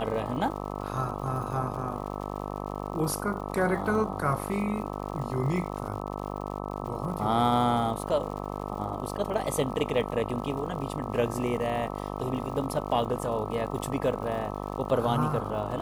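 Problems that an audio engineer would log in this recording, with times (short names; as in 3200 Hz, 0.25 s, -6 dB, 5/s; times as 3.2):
buzz 50 Hz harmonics 26 -35 dBFS
crackle 110/s -38 dBFS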